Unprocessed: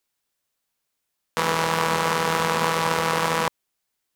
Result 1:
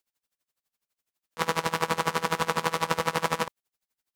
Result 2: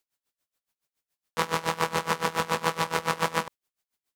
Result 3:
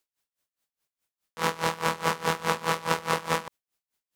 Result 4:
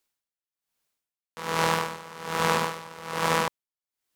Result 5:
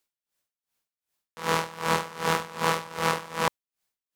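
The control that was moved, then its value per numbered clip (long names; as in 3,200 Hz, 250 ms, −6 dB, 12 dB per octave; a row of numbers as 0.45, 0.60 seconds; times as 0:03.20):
tremolo with a sine in dB, speed: 12, 7.1, 4.8, 1.2, 2.6 Hertz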